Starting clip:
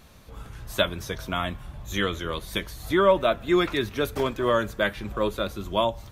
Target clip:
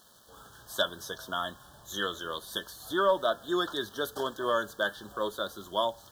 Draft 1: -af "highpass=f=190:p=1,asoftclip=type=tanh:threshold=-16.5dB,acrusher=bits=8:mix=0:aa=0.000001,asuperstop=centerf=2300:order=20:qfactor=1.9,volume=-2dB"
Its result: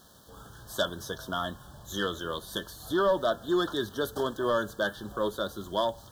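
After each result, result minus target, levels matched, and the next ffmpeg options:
soft clip: distortion +12 dB; 250 Hz band +3.5 dB
-af "highpass=f=190:p=1,asoftclip=type=tanh:threshold=-10dB,acrusher=bits=8:mix=0:aa=0.000001,asuperstop=centerf=2300:order=20:qfactor=1.9,volume=-2dB"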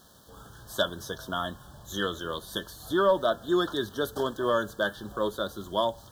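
250 Hz band +3.5 dB
-af "highpass=f=650:p=1,asoftclip=type=tanh:threshold=-10dB,acrusher=bits=8:mix=0:aa=0.000001,asuperstop=centerf=2300:order=20:qfactor=1.9,volume=-2dB"

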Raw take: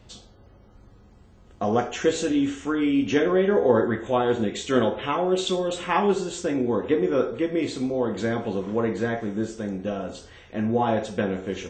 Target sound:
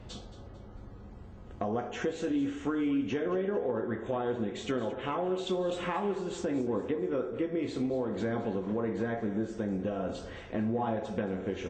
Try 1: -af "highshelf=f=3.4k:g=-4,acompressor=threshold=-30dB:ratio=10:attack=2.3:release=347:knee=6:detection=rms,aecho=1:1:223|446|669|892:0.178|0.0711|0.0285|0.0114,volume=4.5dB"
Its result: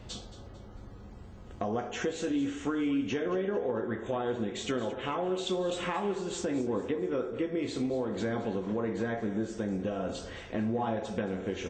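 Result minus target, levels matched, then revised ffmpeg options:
8000 Hz band +6.5 dB
-af "highshelf=f=3.4k:g=-12.5,acompressor=threshold=-30dB:ratio=10:attack=2.3:release=347:knee=6:detection=rms,aecho=1:1:223|446|669|892:0.178|0.0711|0.0285|0.0114,volume=4.5dB"

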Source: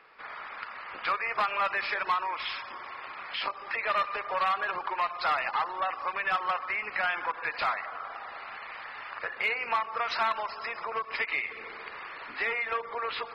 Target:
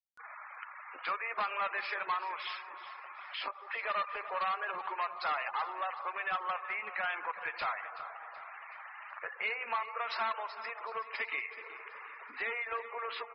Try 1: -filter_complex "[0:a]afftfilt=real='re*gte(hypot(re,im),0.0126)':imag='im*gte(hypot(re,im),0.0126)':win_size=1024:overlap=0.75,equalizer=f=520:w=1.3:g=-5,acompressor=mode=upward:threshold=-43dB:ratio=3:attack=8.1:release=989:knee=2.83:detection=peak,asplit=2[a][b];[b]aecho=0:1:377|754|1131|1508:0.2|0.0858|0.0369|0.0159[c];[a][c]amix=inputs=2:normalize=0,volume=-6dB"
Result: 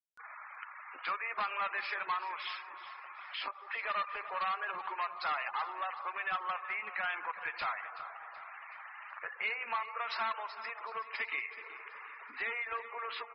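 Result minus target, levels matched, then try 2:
500 Hz band -3.5 dB
-filter_complex "[0:a]afftfilt=real='re*gte(hypot(re,im),0.0126)':imag='im*gte(hypot(re,im),0.0126)':win_size=1024:overlap=0.75,acompressor=mode=upward:threshold=-43dB:ratio=3:attack=8.1:release=989:knee=2.83:detection=peak,asplit=2[a][b];[b]aecho=0:1:377|754|1131|1508:0.2|0.0858|0.0369|0.0159[c];[a][c]amix=inputs=2:normalize=0,volume=-6dB"

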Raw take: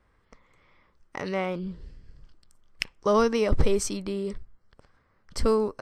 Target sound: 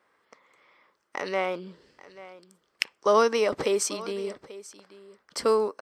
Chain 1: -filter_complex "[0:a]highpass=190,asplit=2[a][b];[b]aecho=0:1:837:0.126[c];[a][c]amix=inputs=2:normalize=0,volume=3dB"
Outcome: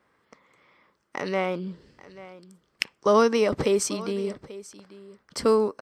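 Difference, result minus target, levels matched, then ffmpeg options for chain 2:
250 Hz band +5.5 dB
-filter_complex "[0:a]highpass=390,asplit=2[a][b];[b]aecho=0:1:837:0.126[c];[a][c]amix=inputs=2:normalize=0,volume=3dB"

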